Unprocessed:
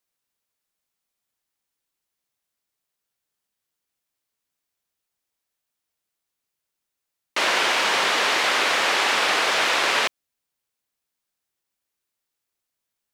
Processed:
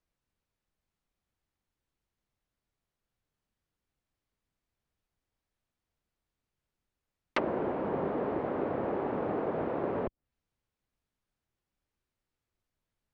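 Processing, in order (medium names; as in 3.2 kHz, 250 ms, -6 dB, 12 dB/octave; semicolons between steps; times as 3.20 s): low-pass that closes with the level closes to 470 Hz, closed at -20.5 dBFS; RIAA curve playback; trim -1.5 dB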